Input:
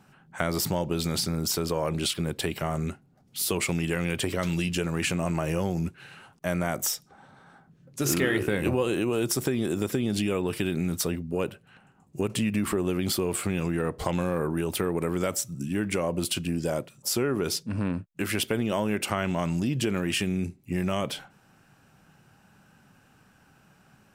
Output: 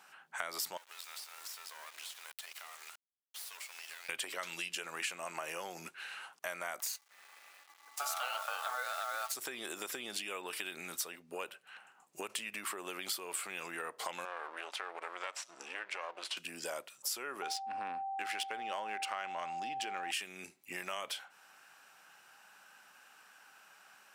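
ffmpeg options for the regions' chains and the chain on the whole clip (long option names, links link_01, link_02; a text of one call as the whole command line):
ffmpeg -i in.wav -filter_complex "[0:a]asettb=1/sr,asplit=3[link_01][link_02][link_03];[link_01]atrim=end=0.774[link_04];[link_02]atrim=start=0.77:end=4.09,asetpts=PTS-STARTPTS,afade=type=in:duration=0.004:curve=qsin,afade=type=out:start_time=3.316:duration=0.004:curve=qsin,highpass=1100,acompressor=threshold=-44dB:ratio=4:attack=3.2:release=140:knee=1:detection=peak,acrusher=bits=6:dc=4:mix=0:aa=0.000001[link_05];[link_03]atrim=start=4.086[link_06];[link_04][link_05]acrossfade=duration=0.004:curve1=hsin:curve2=qsin[link_07];[link_07][link_06]acrossfade=duration=0.004:curve1=qsin:curve2=hsin,asettb=1/sr,asplit=3[link_08][link_09][link_10];[link_08]atrim=end=6.804[link_11];[link_09]atrim=start=6.8:end=9.35,asetpts=PTS-STARTPTS,afade=type=in:duration=0.004:curve=qsin,afade=type=out:start_time=2.546:duration=0.004:curve=qsin,bandreject=frequency=870:width=15,aeval=exprs='val(0)*sin(2*PI*1000*n/s)':channel_layout=same,acrusher=bits=7:dc=4:mix=0:aa=0.000001[link_12];[link_10]atrim=start=9.346[link_13];[link_11][link_12]acrossfade=duration=0.004:curve1=hsin:curve2=qsin[link_14];[link_14][link_13]acrossfade=duration=0.004:curve1=qsin:curve2=hsin,asettb=1/sr,asplit=3[link_15][link_16][link_17];[link_15]atrim=end=14.254[link_18];[link_16]atrim=start=14.25:end=16.37,asetpts=PTS-STARTPTS,afade=type=in:duration=0.004:curve=qsin,afade=type=out:start_time=2.116:duration=0.004:curve=qsin,aeval=exprs='if(lt(val(0),0),0.251*val(0),val(0))':channel_layout=same,highpass=480,lowpass=4400,acompressor=mode=upward:threshold=-35dB:ratio=2.5:attack=3.2:release=140:knee=2.83:detection=peak[link_19];[link_17]atrim=start=16.366[link_20];[link_18][link_19]acrossfade=duration=0.004:curve1=hsin:curve2=qsin[link_21];[link_21][link_20]acrossfade=duration=0.004:curve1=qsin:curve2=hsin,asettb=1/sr,asplit=3[link_22][link_23][link_24];[link_22]atrim=end=17.424[link_25];[link_23]atrim=start=17.42:end=20.11,asetpts=PTS-STARTPTS,afade=type=in:duration=0.004:curve=qsin,afade=type=out:start_time=2.686:duration=0.004:curve=qsin,adynamicsmooth=sensitivity=3.5:basefreq=4500,aeval=exprs='val(0)+0.0355*sin(2*PI*780*n/s)':channel_layout=same[link_26];[link_24]atrim=start=20.106[link_27];[link_25][link_26]acrossfade=duration=0.004:curve1=hsin:curve2=qsin[link_28];[link_28][link_27]acrossfade=duration=0.004:curve1=qsin:curve2=hsin,highpass=940,acompressor=threshold=-45dB:ratio=2.5,volume=4dB" out.wav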